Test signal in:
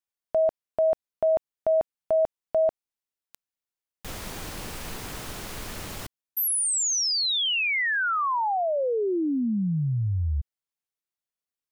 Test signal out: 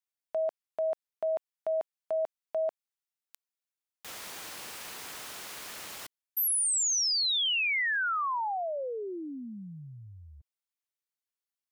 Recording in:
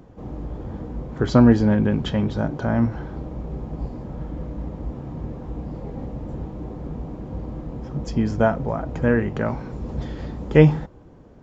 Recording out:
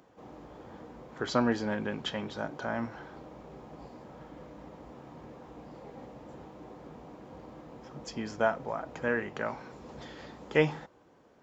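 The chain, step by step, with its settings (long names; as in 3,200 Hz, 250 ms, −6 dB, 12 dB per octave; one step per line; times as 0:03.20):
high-pass filter 1,000 Hz 6 dB per octave
level −2.5 dB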